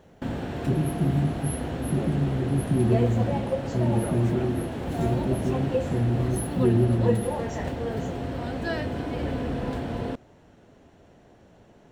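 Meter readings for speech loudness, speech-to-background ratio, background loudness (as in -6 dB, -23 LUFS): -26.5 LUFS, 4.0 dB, -30.5 LUFS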